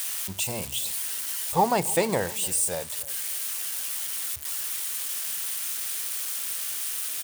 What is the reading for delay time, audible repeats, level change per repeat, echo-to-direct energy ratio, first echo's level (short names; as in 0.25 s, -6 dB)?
0.296 s, 2, -11.0 dB, -19.5 dB, -20.0 dB